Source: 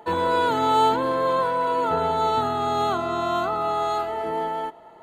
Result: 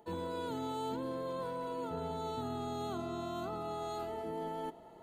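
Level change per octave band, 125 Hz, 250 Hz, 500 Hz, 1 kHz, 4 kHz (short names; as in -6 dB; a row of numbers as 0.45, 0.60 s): -9.0, -9.5, -14.5, -19.5, -16.0 dB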